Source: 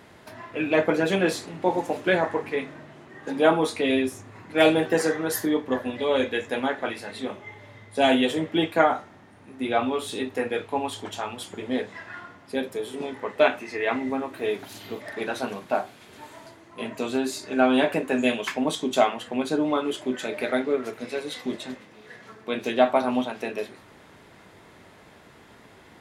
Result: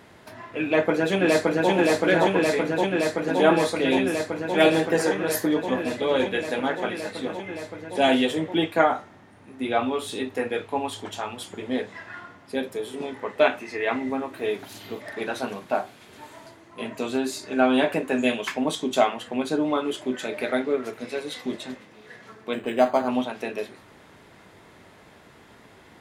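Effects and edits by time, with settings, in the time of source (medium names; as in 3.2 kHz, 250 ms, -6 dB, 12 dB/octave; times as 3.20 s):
0.64–1.70 s: echo throw 570 ms, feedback 85%, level -0.5 dB
22.53–23.08 s: decimation joined by straight lines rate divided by 8×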